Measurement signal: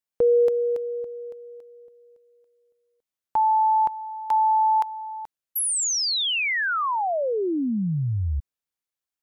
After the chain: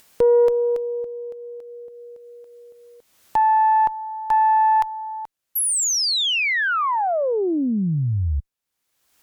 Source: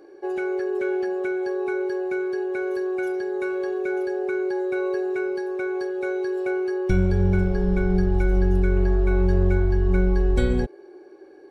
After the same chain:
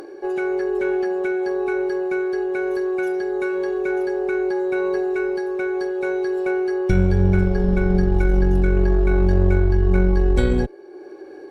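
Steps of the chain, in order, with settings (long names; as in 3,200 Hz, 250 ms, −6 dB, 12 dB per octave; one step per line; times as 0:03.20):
harmonic generator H 4 −22 dB, 5 −33 dB, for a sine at −6.5 dBFS
upward compression, threshold −33 dBFS
level +2.5 dB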